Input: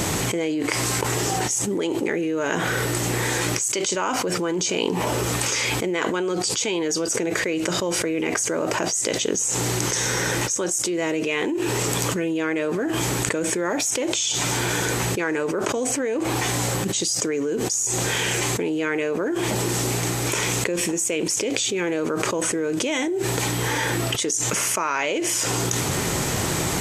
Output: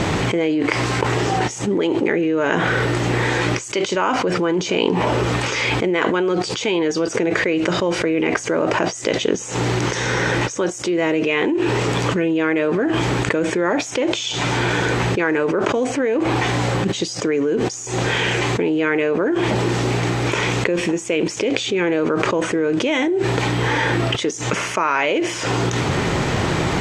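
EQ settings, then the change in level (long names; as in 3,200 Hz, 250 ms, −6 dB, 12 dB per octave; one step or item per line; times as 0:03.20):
low-pass filter 3,400 Hz 12 dB per octave
+5.5 dB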